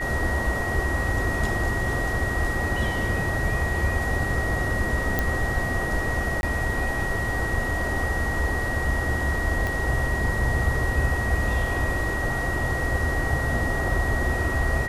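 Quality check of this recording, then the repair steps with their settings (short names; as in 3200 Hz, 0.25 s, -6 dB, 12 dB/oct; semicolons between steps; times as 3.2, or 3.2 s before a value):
tone 1900 Hz -28 dBFS
5.19 pop
6.41–6.43 gap 21 ms
9.67 pop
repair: de-click; notch 1900 Hz, Q 30; interpolate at 6.41, 21 ms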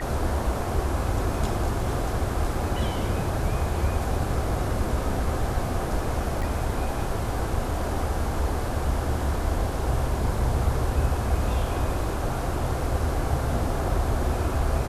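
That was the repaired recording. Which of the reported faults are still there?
9.67 pop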